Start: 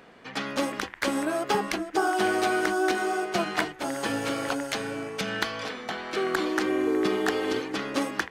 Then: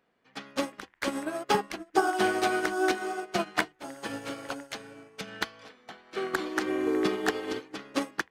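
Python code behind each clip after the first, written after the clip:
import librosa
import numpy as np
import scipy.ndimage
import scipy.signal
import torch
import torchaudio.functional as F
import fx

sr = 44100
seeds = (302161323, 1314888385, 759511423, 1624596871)

y = fx.upward_expand(x, sr, threshold_db=-37.0, expansion=2.5)
y = y * 10.0 ** (3.0 / 20.0)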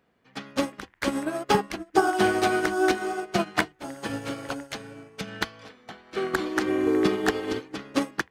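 y = fx.peak_eq(x, sr, hz=71.0, db=9.5, octaves=2.9)
y = y * 10.0 ** (2.5 / 20.0)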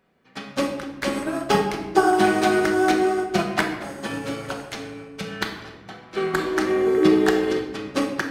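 y = fx.room_shoebox(x, sr, seeds[0], volume_m3=580.0, walls='mixed', distance_m=1.1)
y = y * 10.0 ** (1.0 / 20.0)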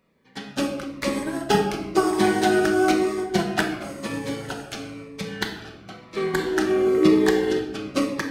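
y = fx.notch_cascade(x, sr, direction='falling', hz=0.99)
y = y * 10.0 ** (1.0 / 20.0)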